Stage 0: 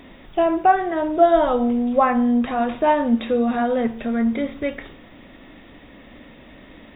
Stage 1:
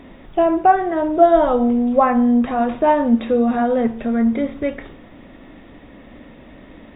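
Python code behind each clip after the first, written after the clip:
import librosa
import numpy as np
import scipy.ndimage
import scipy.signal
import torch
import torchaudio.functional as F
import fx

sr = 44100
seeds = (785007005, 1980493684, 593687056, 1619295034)

y = fx.high_shelf(x, sr, hz=2100.0, db=-9.5)
y = y * 10.0 ** (3.5 / 20.0)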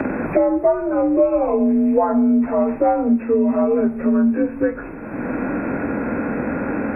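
y = fx.partial_stretch(x, sr, pct=87)
y = fx.band_squash(y, sr, depth_pct=100)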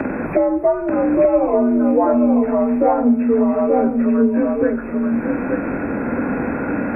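y = x + 10.0 ** (-3.5 / 20.0) * np.pad(x, (int(884 * sr / 1000.0), 0))[:len(x)]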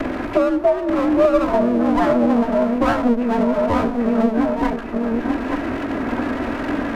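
y = fx.lower_of_two(x, sr, delay_ms=3.1)
y = y + 10.0 ** (-21.0 / 20.0) * np.pad(y, (int(408 * sr / 1000.0), 0))[:len(y)]
y = fx.vibrato(y, sr, rate_hz=6.6, depth_cents=45.0)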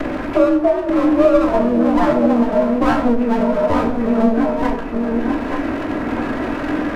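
y = fx.room_shoebox(x, sr, seeds[0], volume_m3=100.0, walls='mixed', distance_m=0.47)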